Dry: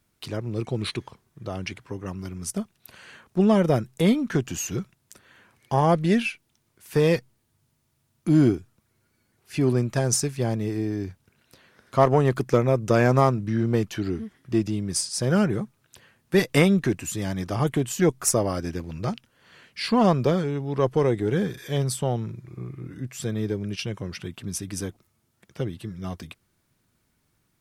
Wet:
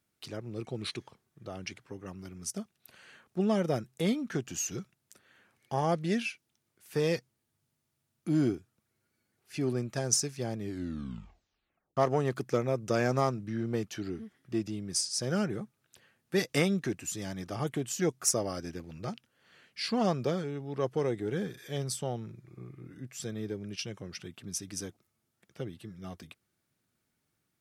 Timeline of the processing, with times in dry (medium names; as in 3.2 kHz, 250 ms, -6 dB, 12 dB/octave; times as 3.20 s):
10.57 s: tape stop 1.40 s
whole clip: high-pass 130 Hz 6 dB/octave; band-stop 1 kHz, Q 9.8; dynamic bell 5.7 kHz, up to +7 dB, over -47 dBFS, Q 1.6; trim -8 dB